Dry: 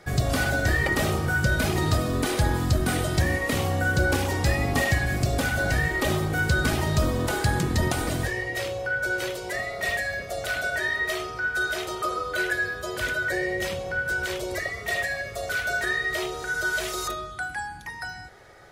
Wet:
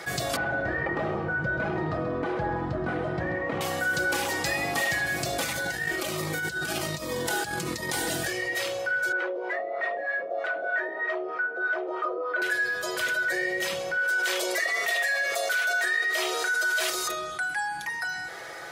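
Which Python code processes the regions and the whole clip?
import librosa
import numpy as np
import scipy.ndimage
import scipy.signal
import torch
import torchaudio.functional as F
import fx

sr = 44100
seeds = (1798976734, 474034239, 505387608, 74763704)

y = fx.chain(x, sr, fx.lowpass(hz=1200.0, slope=12),
    fx.low_shelf(hz=170.0, db=5.0),
    fx.echo_single(ms=134, db=-11.0), at=(0.36, 3.61))
y = fx.chain(y, sr, fx.over_compress(threshold_db=-26.0, ratio=-0.5),
    fx.notch_cascade(direction='falling', hz=1.3), at=(5.42, 8.49))
y = fx.chain(y, sr, fx.highpass(hz=270.0, slope=24),
    fx.filter_lfo_lowpass(shape='sine', hz=3.2, low_hz=510.0, high_hz=1600.0, q=1.3), at=(9.12, 12.42))
y = fx.chain(y, sr, fx.highpass(hz=400.0, slope=12),
    fx.env_flatten(amount_pct=70), at=(13.97, 16.9))
y = fx.highpass(y, sr, hz=670.0, slope=6)
y = y + 0.39 * np.pad(y, (int(6.0 * sr / 1000.0), 0))[:len(y)]
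y = fx.env_flatten(y, sr, amount_pct=50)
y = F.gain(torch.from_numpy(y), -3.0).numpy()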